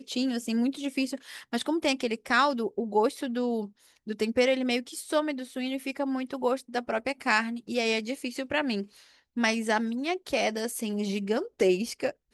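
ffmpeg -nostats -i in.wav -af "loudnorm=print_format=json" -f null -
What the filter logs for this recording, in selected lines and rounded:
"input_i" : "-28.6",
"input_tp" : "-9.9",
"input_lra" : "1.1",
"input_thresh" : "-38.8",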